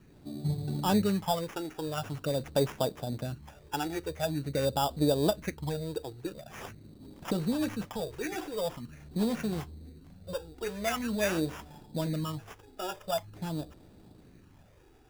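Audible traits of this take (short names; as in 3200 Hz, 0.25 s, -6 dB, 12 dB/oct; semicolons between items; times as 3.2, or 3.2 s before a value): phasing stages 12, 0.45 Hz, lowest notch 180–3000 Hz; aliases and images of a low sample rate 4200 Hz, jitter 0%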